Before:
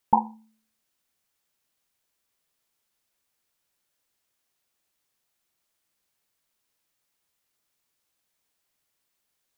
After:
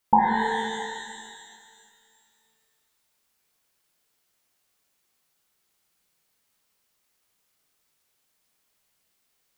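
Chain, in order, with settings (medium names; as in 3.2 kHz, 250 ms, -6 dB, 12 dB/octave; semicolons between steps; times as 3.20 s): pitch-shifted reverb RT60 2.1 s, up +12 st, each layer -8 dB, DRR -3.5 dB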